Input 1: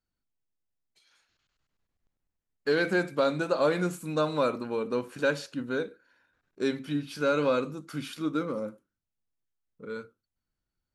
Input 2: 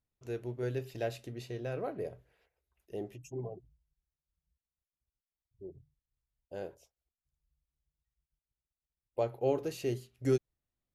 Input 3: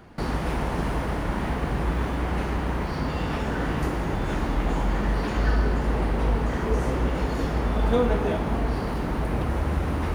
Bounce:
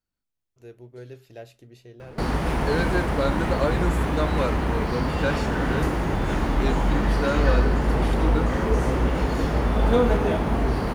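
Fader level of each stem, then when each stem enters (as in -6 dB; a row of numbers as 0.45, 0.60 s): -0.5, -6.0, +2.5 dB; 0.00, 0.35, 2.00 s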